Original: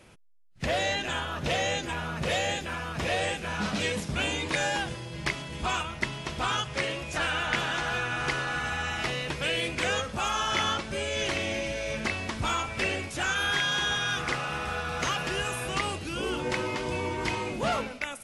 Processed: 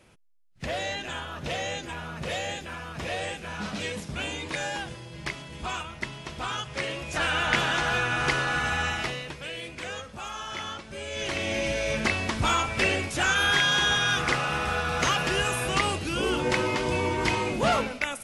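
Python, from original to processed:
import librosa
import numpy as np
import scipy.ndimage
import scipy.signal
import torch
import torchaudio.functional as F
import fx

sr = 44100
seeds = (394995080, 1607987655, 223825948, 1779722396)

y = fx.gain(x, sr, db=fx.line((6.56, -3.5), (7.47, 4.0), (8.86, 4.0), (9.42, -8.0), (10.84, -8.0), (11.68, 4.5)))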